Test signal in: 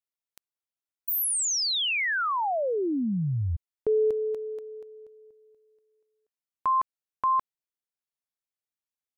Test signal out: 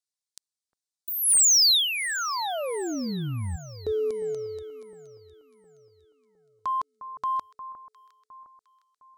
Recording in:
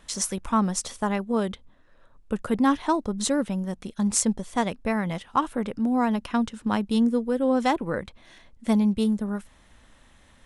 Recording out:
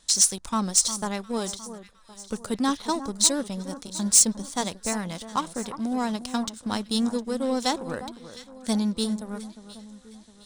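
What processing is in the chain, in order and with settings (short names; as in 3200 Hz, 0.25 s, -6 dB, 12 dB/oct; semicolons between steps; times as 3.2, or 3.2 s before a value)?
band shelf 6000 Hz +15.5 dB; sample leveller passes 1; soft clip -2.5 dBFS; echo with dull and thin repeats by turns 0.355 s, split 1500 Hz, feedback 63%, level -12 dB; gain -7 dB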